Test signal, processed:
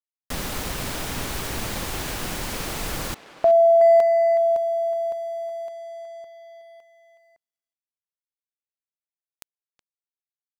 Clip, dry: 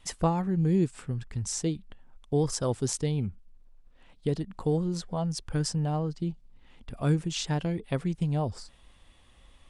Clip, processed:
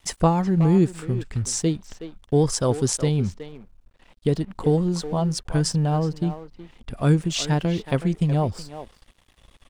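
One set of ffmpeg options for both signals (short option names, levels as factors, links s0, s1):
-filter_complex "[0:a]asplit=2[s0][s1];[s1]adelay=370,highpass=300,lowpass=3400,asoftclip=type=hard:threshold=0.0794,volume=0.316[s2];[s0][s2]amix=inputs=2:normalize=0,aeval=exprs='sgn(val(0))*max(abs(val(0))-0.00141,0)':c=same,volume=2.24"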